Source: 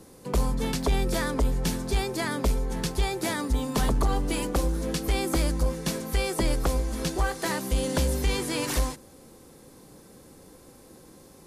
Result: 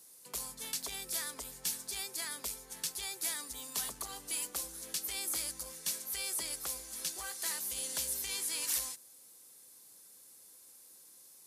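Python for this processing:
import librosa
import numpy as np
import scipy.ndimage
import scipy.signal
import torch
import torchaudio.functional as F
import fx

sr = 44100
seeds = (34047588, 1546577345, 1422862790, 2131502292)

y = scipy.signal.sosfilt(scipy.signal.butter(2, 63.0, 'highpass', fs=sr, output='sos'), x)
y = F.preemphasis(torch.from_numpy(y), 0.97).numpy()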